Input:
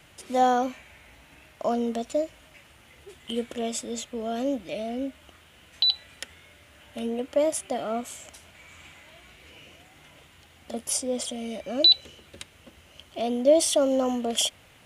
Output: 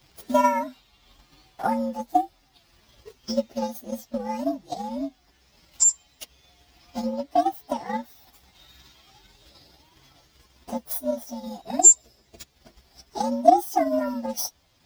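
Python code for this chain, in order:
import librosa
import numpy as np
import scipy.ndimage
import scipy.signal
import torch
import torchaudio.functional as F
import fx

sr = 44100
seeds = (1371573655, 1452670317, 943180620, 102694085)

y = fx.partial_stretch(x, sr, pct=122)
y = fx.transient(y, sr, attack_db=9, sustain_db=-5)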